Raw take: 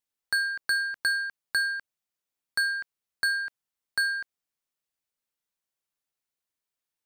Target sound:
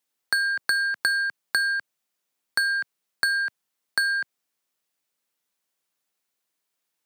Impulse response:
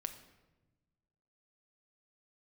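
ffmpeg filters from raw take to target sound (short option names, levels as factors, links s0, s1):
-filter_complex "[0:a]acompressor=threshold=0.0398:ratio=6,acrossover=split=120|4200[s0][s1][s2];[s0]acrusher=bits=4:mix=0:aa=0.000001[s3];[s3][s1][s2]amix=inputs=3:normalize=0,volume=2.51"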